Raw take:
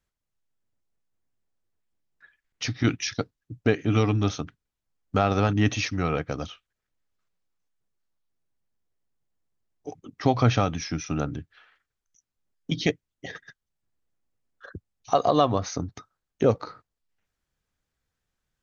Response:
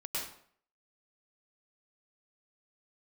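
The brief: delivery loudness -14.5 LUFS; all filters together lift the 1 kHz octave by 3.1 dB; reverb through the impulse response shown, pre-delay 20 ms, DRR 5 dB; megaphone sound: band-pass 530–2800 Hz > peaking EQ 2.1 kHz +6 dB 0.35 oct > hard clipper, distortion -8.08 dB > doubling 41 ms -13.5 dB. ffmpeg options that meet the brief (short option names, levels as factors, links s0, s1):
-filter_complex "[0:a]equalizer=f=1000:t=o:g=5.5,asplit=2[s0][s1];[1:a]atrim=start_sample=2205,adelay=20[s2];[s1][s2]afir=irnorm=-1:irlink=0,volume=0.398[s3];[s0][s3]amix=inputs=2:normalize=0,highpass=530,lowpass=2800,equalizer=f=2100:t=o:w=0.35:g=6,asoftclip=type=hard:threshold=0.1,asplit=2[s4][s5];[s5]adelay=41,volume=0.211[s6];[s4][s6]amix=inputs=2:normalize=0,volume=5.62"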